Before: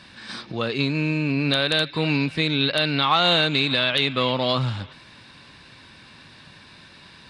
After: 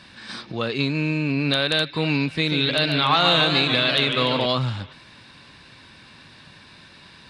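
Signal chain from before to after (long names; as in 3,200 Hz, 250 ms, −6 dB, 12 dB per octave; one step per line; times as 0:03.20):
0:02.31–0:04.46: feedback echo with a swinging delay time 145 ms, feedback 63%, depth 186 cents, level −7 dB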